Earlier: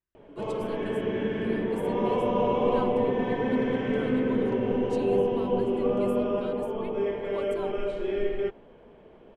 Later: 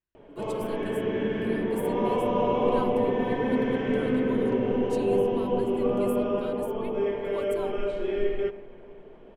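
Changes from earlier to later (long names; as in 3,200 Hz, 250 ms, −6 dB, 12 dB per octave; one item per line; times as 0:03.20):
speech: remove high-frequency loss of the air 53 metres
reverb: on, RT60 3.0 s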